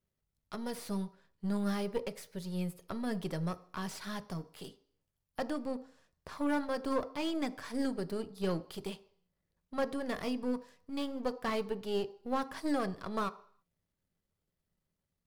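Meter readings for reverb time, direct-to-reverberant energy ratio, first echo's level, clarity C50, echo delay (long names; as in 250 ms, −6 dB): 0.55 s, 11.5 dB, no echo audible, 18.0 dB, no echo audible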